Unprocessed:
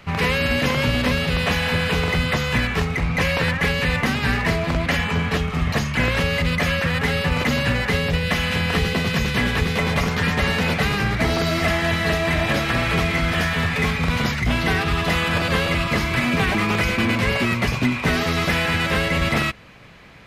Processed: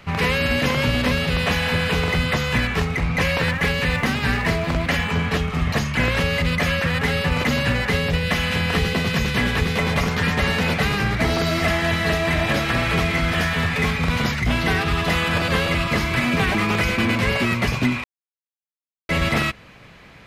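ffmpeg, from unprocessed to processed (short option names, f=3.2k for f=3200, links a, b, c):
-filter_complex "[0:a]asettb=1/sr,asplit=3[a][b][c];[a]atrim=end=3.374[d];[b]atrim=start=3.37:end=5.13,asetpts=PTS-STARTPTS,afade=t=in:d=0.004:c=qsin,afade=t=out:st=1.756:d=0.004:c=qsin,aeval=exprs='sgn(val(0))*max(abs(val(0))-0.00422,0)':c=same[e];[c]atrim=start=5.126[f];[d][e]acrossfade=d=0.004:c1=hsin:c2=qsin[g];[g][f]acrossfade=d=0.004:c1=qsin:c2=hsin,asplit=3[h][i][j];[h]atrim=end=18.04,asetpts=PTS-STARTPTS,afade=t=out:st=18.036:d=0.004:c=hsin[k];[i]atrim=start=18.04:end=19.09,asetpts=PTS-STARTPTS,volume=0[l];[j]atrim=start=19.09,asetpts=PTS-STARTPTS,afade=t=in:d=0.004:c=hsin[m];[k][l][m]concat=n=3:v=0:a=1"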